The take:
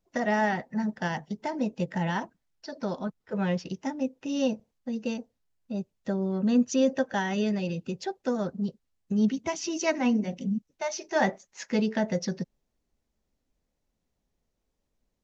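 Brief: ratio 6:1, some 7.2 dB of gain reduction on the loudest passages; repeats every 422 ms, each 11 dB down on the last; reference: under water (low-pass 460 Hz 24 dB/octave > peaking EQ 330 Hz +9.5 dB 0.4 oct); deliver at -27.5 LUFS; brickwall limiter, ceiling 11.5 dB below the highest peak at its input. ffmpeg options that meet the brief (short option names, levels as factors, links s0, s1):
-af "acompressor=threshold=0.0501:ratio=6,alimiter=level_in=1.78:limit=0.0631:level=0:latency=1,volume=0.562,lowpass=f=460:w=0.5412,lowpass=f=460:w=1.3066,equalizer=f=330:t=o:w=0.4:g=9.5,aecho=1:1:422|844|1266:0.282|0.0789|0.0221,volume=2.99"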